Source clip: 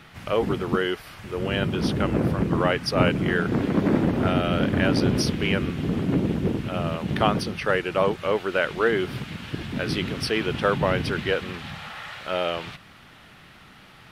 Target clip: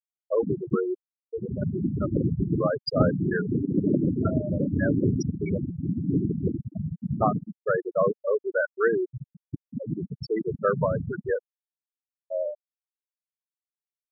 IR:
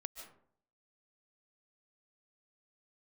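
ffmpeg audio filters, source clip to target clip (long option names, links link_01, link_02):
-af "afftfilt=real='re*gte(hypot(re,im),0.282)':imag='im*gte(hypot(re,im),0.282)':win_size=1024:overlap=0.75,adynamicequalizer=threshold=0.0141:dfrequency=220:dqfactor=3.5:tfrequency=220:tqfactor=3.5:attack=5:release=100:ratio=0.375:range=2:mode=cutabove:tftype=bell"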